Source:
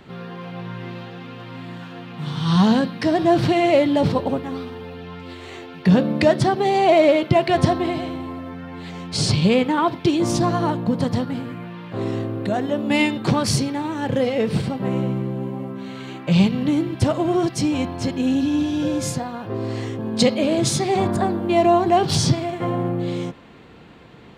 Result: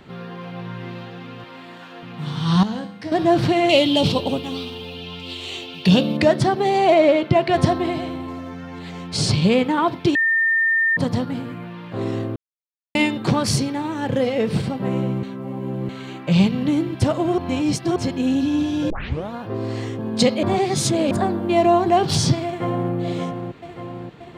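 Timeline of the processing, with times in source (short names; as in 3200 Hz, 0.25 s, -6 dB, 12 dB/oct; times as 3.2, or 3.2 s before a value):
1.44–2.03 HPF 320 Hz
2.63–3.12 resonator 100 Hz, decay 0.6 s, mix 80%
3.69–6.17 resonant high shelf 2300 Hz +8 dB, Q 3
6.94–7.54 high shelf 7600 Hz -9.5 dB
8.28–8.79 bell 6400 Hz +11.5 dB 0.73 oct
10.15–10.97 bleep 1810 Hz -15 dBFS
12.36–12.95 mute
15.23–15.89 reverse
17.38–17.96 reverse
18.9 tape start 0.43 s
20.43–21.11 reverse
22.46–22.93 echo throw 0.58 s, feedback 65%, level -6.5 dB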